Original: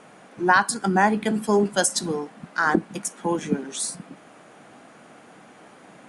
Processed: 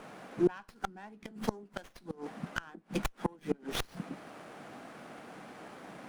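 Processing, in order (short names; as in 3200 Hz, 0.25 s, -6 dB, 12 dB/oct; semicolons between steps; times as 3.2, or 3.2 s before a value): flipped gate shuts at -16 dBFS, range -30 dB; running maximum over 5 samples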